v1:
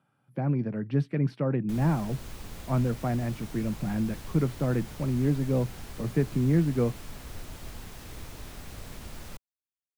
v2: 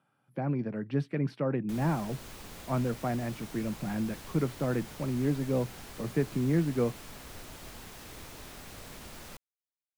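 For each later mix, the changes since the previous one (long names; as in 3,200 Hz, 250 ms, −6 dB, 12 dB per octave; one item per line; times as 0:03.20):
master: add low-shelf EQ 150 Hz −10 dB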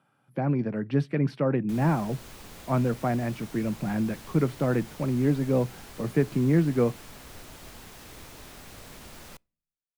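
speech +4.5 dB
reverb: on, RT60 0.50 s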